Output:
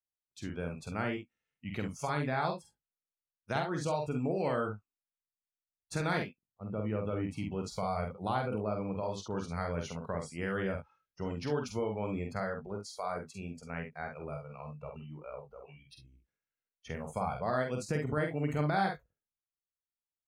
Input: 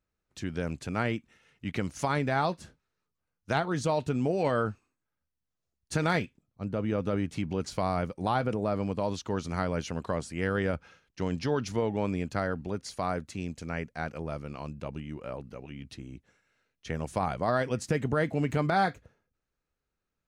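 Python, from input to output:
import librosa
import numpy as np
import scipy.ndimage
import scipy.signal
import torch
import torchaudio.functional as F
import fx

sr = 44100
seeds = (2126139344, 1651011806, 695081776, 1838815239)

y = fx.noise_reduce_blind(x, sr, reduce_db=21)
y = fx.room_early_taps(y, sr, ms=(47, 67), db=(-4.5, -11.5))
y = y * 10.0 ** (-6.0 / 20.0)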